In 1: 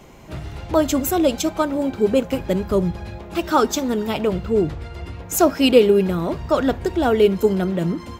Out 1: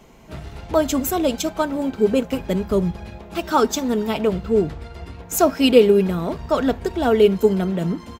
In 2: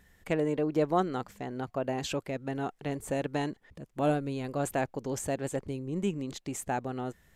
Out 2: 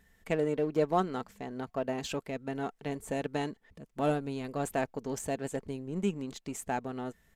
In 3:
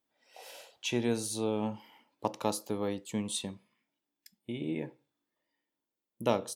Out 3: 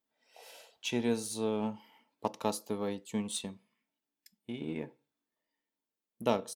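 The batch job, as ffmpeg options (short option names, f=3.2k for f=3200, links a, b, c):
-filter_complex "[0:a]aecho=1:1:4.5:0.31,asplit=2[a][b];[b]aeval=exprs='sgn(val(0))*max(abs(val(0))-0.0178,0)':c=same,volume=-7dB[c];[a][c]amix=inputs=2:normalize=0,volume=-4dB"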